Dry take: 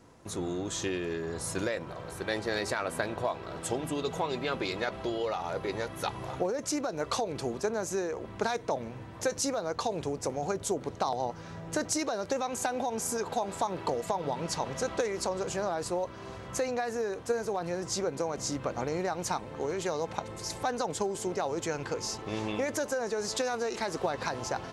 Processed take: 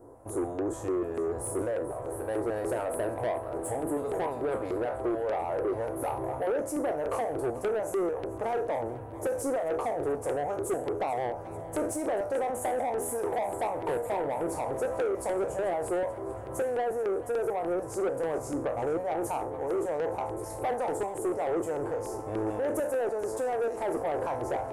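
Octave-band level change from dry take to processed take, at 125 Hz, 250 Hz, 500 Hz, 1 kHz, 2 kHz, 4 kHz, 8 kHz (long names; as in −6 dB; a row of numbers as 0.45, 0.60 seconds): −2.0 dB, +1.0 dB, +3.5 dB, +1.0 dB, −4.5 dB, below −10 dB, −6.0 dB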